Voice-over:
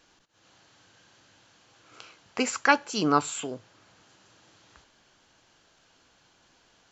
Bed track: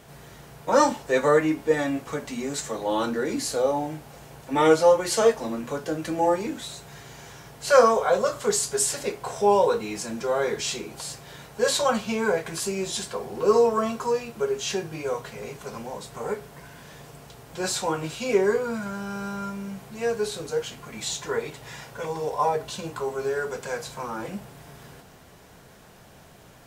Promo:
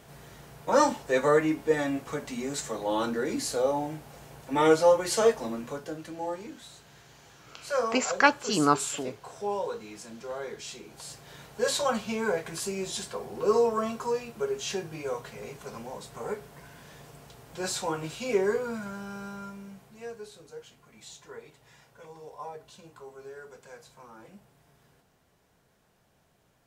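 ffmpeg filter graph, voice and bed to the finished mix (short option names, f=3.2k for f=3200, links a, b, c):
-filter_complex "[0:a]adelay=5550,volume=0dB[a];[1:a]volume=4.5dB,afade=t=out:st=5.43:d=0.67:silence=0.354813,afade=t=in:st=10.77:d=0.63:silence=0.421697,afade=t=out:st=18.64:d=1.63:silence=0.237137[b];[a][b]amix=inputs=2:normalize=0"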